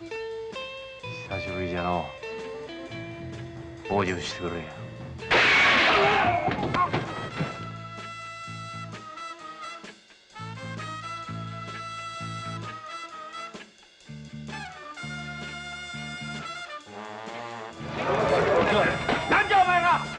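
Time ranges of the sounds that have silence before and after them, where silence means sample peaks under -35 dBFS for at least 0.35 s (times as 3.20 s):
10.36–13.62 s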